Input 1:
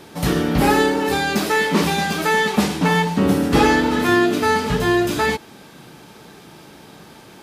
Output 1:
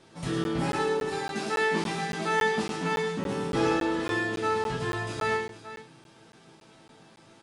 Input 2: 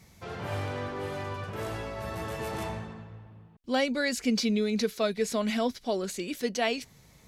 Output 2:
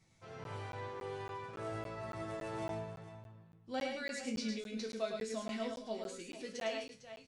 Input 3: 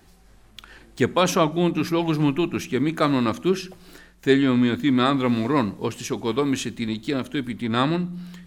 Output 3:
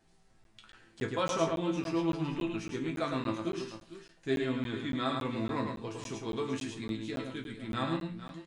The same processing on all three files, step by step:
resonators tuned to a chord A2 minor, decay 0.27 s
on a send: multi-tap delay 107/453 ms −5/−13 dB
on the sum: downsampling to 22,050 Hz
regular buffer underruns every 0.28 s, samples 512, zero, from 0:00.44

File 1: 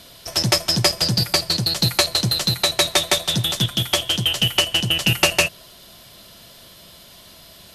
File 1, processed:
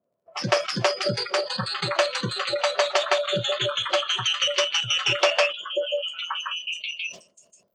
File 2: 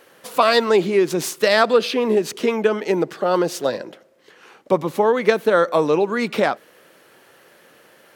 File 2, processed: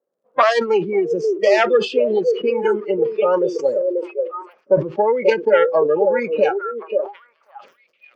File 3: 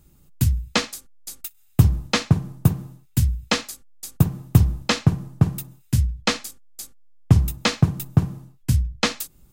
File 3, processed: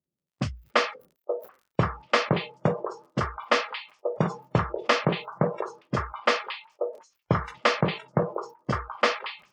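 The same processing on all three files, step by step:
phase distortion by the signal itself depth 0.24 ms
low-pass that shuts in the quiet parts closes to 360 Hz, open at −17.5 dBFS
loudspeaker in its box 270–4,700 Hz, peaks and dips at 300 Hz −8 dB, 590 Hz +7 dB, 1,200 Hz +5 dB, 3,900 Hz −10 dB
on a send: echo through a band-pass that steps 536 ms, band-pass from 440 Hz, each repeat 1.4 octaves, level −3 dB
on the sum: surface crackle 73 per second −51 dBFS
in parallel at −0.5 dB: downward compressor 6 to 1, threshold −27 dBFS
on the sum: noise reduction from a noise print of the clip's start 25 dB
level that may fall only so fast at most 150 dB per second
level −1.5 dB

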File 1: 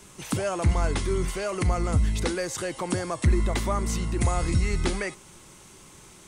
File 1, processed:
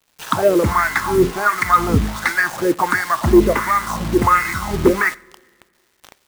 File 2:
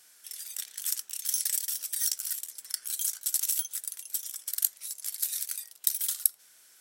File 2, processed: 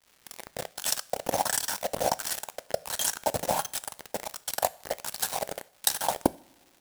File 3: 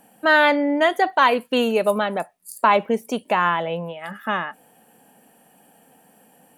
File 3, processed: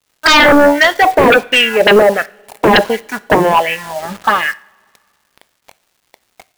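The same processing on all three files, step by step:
in parallel at −11 dB: decimation without filtering 36×
on the sum: LFO wah 1.4 Hz 410–2,200 Hz, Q 2.8
phaser swept by the level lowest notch 330 Hz, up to 2,400 Hz, full sweep at −22 dBFS
sine wavefolder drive 15 dB, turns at −10.5 dBFS
bit-depth reduction 6 bits, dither none
dead-zone distortion −42 dBFS
surface crackle 510 per second −54 dBFS
coupled-rooms reverb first 0.43 s, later 2 s, from −19 dB, DRR 16.5 dB
level +7 dB

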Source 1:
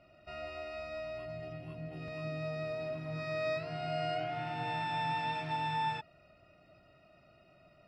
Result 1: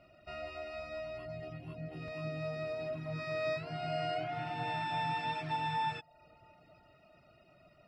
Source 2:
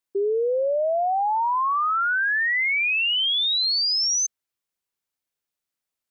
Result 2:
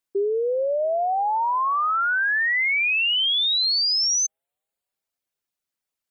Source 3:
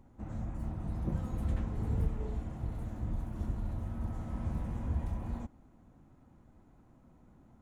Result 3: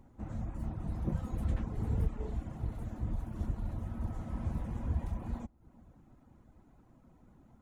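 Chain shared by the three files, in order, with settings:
bucket-brigade delay 344 ms, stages 2,048, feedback 55%, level −23 dB
reverb reduction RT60 0.55 s
level +1 dB

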